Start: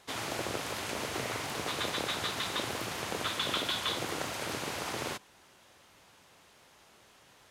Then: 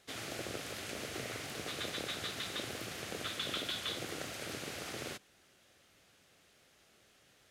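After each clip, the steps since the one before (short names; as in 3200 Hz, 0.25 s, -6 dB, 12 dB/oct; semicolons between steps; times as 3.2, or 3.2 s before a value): bell 960 Hz -12 dB 0.47 oct; gain -5 dB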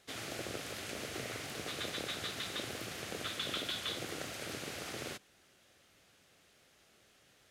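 nothing audible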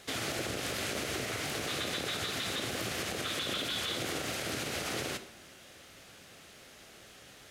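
in parallel at 0 dB: compressor, threshold -50 dBFS, peak gain reduction 15 dB; on the sum: limiter -31.5 dBFS, peak gain reduction 8 dB; reverb RT60 1.0 s, pre-delay 10 ms, DRR 9 dB; gain +6 dB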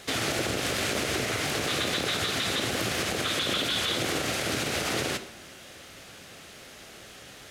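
Doppler distortion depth 0.15 ms; gain +7 dB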